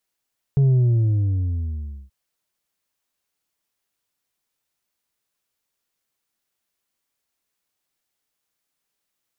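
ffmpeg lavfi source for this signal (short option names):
-f lavfi -i "aevalsrc='0.211*clip((1.53-t)/1.44,0,1)*tanh(1.58*sin(2*PI*140*1.53/log(65/140)*(exp(log(65/140)*t/1.53)-1)))/tanh(1.58)':d=1.53:s=44100"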